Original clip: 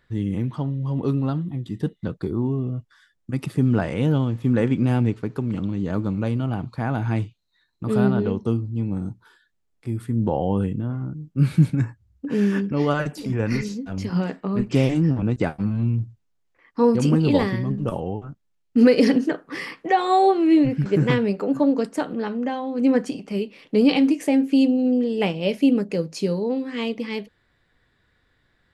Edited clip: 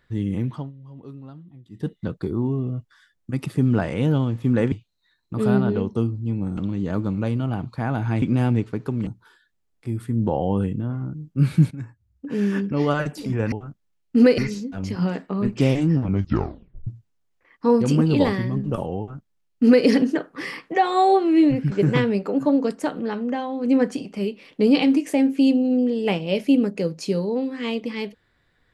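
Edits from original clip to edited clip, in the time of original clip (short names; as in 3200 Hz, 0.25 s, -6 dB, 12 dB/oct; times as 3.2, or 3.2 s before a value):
0.51–1.91 dip -17 dB, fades 0.21 s
4.72–5.57 swap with 7.22–9.07
11.71–12.7 fade in, from -14 dB
15.18 tape stop 0.83 s
18.13–18.99 copy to 13.52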